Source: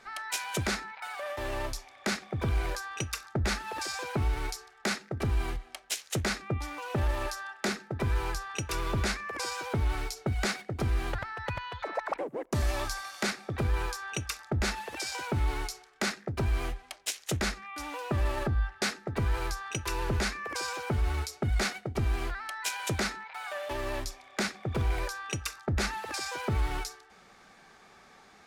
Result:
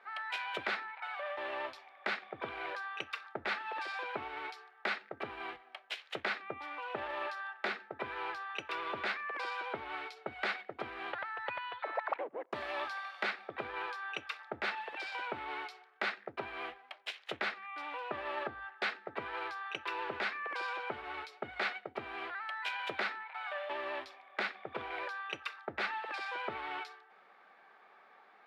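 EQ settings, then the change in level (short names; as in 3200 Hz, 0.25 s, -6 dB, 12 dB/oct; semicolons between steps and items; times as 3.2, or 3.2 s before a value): HPF 570 Hz 12 dB/oct; dynamic EQ 3400 Hz, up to +7 dB, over -50 dBFS, Q 0.9; air absorption 480 m; 0.0 dB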